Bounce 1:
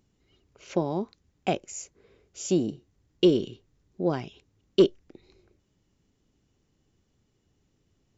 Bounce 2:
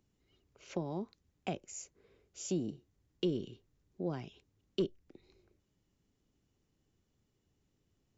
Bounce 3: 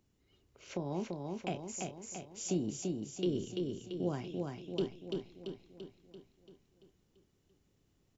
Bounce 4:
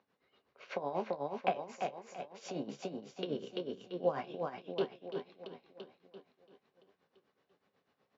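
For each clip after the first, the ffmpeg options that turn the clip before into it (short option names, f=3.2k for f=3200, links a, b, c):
-filter_complex "[0:a]acrossover=split=230[a][b];[b]acompressor=threshold=-31dB:ratio=2.5[c];[a][c]amix=inputs=2:normalize=0,volume=-7dB"
-filter_complex "[0:a]alimiter=level_in=2dB:limit=-24dB:level=0:latency=1:release=160,volume=-2dB,asplit=2[a][b];[b]adelay=28,volume=-11.5dB[c];[a][c]amix=inputs=2:normalize=0,asplit=2[d][e];[e]aecho=0:1:339|678|1017|1356|1695|2034|2373|2712:0.668|0.368|0.202|0.111|0.0612|0.0336|0.0185|0.0102[f];[d][f]amix=inputs=2:normalize=0,volume=1.5dB"
-af "flanger=delay=9.7:depth=5.4:regen=58:speed=1.3:shape=triangular,tremolo=f=8.1:d=0.71,highpass=320,equalizer=f=330:t=q:w=4:g=-10,equalizer=f=530:t=q:w=4:g=5,equalizer=f=760:t=q:w=4:g=4,equalizer=f=1.1k:t=q:w=4:g=6,equalizer=f=1.6k:t=q:w=4:g=5,equalizer=f=3.1k:t=q:w=4:g=-5,lowpass=f=4.1k:w=0.5412,lowpass=f=4.1k:w=1.3066,volume=10.5dB"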